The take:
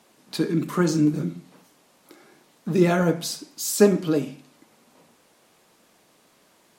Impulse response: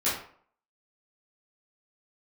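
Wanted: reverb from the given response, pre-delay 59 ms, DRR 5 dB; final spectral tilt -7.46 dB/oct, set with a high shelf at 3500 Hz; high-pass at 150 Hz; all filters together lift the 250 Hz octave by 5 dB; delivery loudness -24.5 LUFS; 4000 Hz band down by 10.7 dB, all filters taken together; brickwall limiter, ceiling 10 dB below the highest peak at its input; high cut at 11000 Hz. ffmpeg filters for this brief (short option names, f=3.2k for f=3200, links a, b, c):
-filter_complex "[0:a]highpass=150,lowpass=11k,equalizer=f=250:t=o:g=8.5,highshelf=f=3.5k:g=-8.5,equalizer=f=4k:t=o:g=-7,alimiter=limit=-10.5dB:level=0:latency=1,asplit=2[a][b];[1:a]atrim=start_sample=2205,adelay=59[c];[b][c]afir=irnorm=-1:irlink=0,volume=-15.5dB[d];[a][d]amix=inputs=2:normalize=0,volume=-3.5dB"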